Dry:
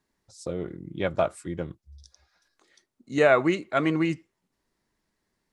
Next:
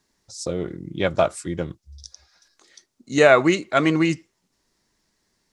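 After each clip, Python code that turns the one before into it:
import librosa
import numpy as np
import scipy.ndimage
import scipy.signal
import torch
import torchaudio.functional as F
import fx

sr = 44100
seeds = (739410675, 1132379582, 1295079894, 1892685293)

y = fx.peak_eq(x, sr, hz=5800.0, db=9.0, octaves=1.3)
y = y * 10.0 ** (5.0 / 20.0)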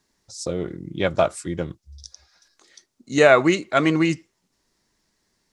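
y = x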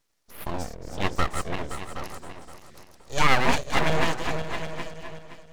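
y = fx.reverse_delay_fb(x, sr, ms=260, feedback_pct=54, wet_db=-6)
y = y + 10.0 ** (-12.0 / 20.0) * np.pad(y, (int(769 * sr / 1000.0), 0))[:len(y)]
y = np.abs(y)
y = y * 10.0 ** (-3.0 / 20.0)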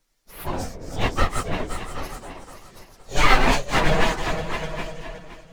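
y = fx.phase_scramble(x, sr, seeds[0], window_ms=50)
y = y * 10.0 ** (3.5 / 20.0)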